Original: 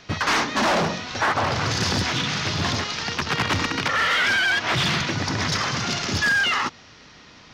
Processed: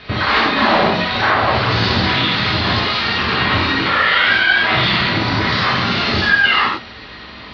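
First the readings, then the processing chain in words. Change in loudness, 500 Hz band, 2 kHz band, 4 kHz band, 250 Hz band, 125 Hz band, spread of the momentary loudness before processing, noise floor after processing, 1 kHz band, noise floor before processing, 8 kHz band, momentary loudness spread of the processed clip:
+7.5 dB, +7.5 dB, +7.5 dB, +7.5 dB, +7.5 dB, +6.0 dB, 6 LU, -35 dBFS, +8.0 dB, -48 dBFS, under -10 dB, 5 LU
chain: elliptic low-pass 4300 Hz, stop band 60 dB; limiter -22 dBFS, peak gain reduction 7.5 dB; non-linear reverb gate 0.12 s flat, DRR -4.5 dB; gain +8 dB

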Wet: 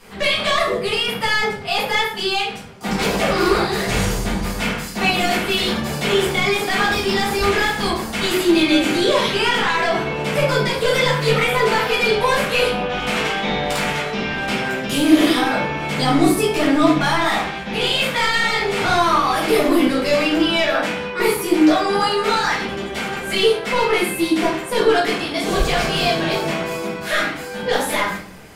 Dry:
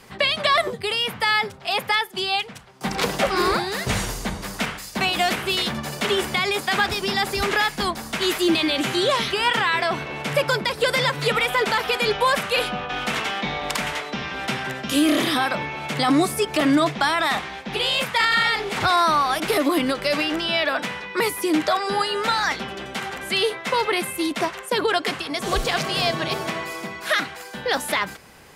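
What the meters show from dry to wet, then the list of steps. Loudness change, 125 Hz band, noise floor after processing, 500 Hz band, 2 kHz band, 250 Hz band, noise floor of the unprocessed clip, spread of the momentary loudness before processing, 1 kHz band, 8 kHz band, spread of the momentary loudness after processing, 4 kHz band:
+3.5 dB, +6.5 dB, -30 dBFS, +5.5 dB, +3.0 dB, +6.0 dB, -39 dBFS, 8 LU, +2.5 dB, +3.0 dB, 6 LU, +2.0 dB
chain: soft clip -15.5 dBFS, distortion -15 dB; shoebox room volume 94 m³, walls mixed, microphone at 1.8 m; gain -3 dB

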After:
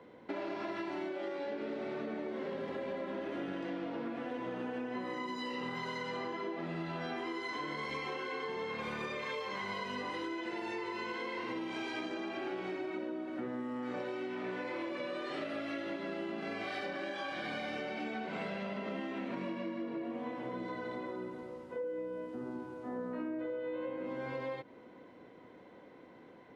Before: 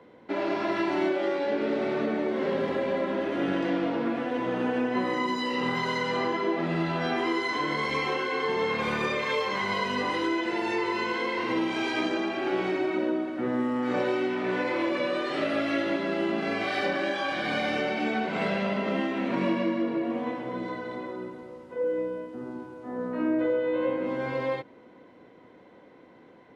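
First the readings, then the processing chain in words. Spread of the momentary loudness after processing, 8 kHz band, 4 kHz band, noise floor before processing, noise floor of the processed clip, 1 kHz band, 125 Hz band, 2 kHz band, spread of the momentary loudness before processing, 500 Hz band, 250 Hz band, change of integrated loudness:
4 LU, n/a, -11.0 dB, -53 dBFS, -56 dBFS, -11.0 dB, -11.0 dB, -11.0 dB, 6 LU, -11.0 dB, -11.0 dB, -11.0 dB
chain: compressor, threshold -34 dBFS, peak gain reduction 11.5 dB; gain -2.5 dB

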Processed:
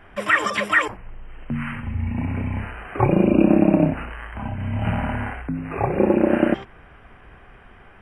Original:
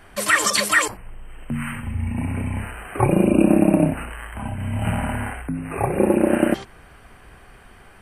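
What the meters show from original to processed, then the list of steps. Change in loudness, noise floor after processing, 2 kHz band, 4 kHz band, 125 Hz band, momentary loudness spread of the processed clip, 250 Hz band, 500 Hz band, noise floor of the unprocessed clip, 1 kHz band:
-0.5 dB, -48 dBFS, -0.5 dB, n/a, 0.0 dB, 14 LU, 0.0 dB, 0.0 dB, -48 dBFS, 0.0 dB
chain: polynomial smoothing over 25 samples

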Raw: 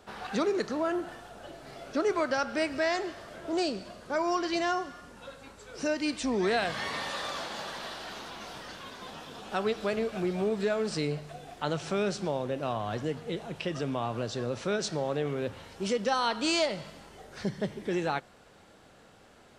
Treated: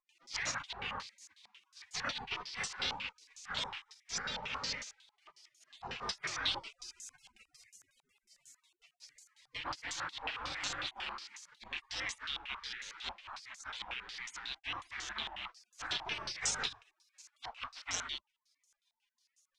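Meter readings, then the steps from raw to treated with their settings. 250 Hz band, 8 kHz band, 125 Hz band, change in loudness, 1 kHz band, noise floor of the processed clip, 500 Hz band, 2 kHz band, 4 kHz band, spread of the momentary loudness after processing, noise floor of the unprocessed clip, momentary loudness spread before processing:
-25.0 dB, +1.0 dB, -18.0 dB, -8.0 dB, -10.5 dB, under -85 dBFS, -24.5 dB, -4.5 dB, -1.5 dB, 15 LU, -57 dBFS, 15 LU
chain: pre-echo 37 ms -24 dB; spectral gate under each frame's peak -30 dB weak; stepped low-pass 11 Hz 860–6500 Hz; gain +6 dB

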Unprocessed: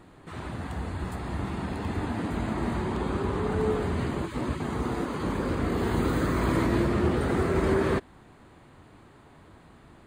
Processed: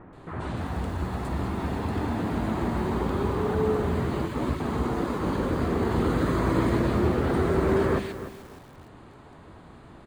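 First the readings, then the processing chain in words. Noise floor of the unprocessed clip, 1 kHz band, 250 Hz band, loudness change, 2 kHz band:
-54 dBFS, +2.0 dB, +1.5 dB, +1.5 dB, 0.0 dB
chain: high shelf 6300 Hz -8.5 dB; notches 50/100/150/200/250/300/350 Hz; in parallel at -1 dB: compressor, threshold -34 dBFS, peak gain reduction 13.5 dB; on the sum: bands offset in time lows, highs 0.13 s, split 2100 Hz; lo-fi delay 0.296 s, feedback 35%, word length 7-bit, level -12 dB

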